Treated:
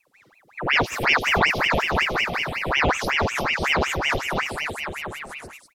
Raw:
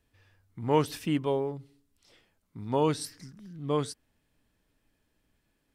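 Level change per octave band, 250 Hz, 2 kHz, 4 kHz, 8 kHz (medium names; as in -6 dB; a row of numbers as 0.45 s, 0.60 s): +1.5 dB, +28.5 dB, +18.5 dB, +9.0 dB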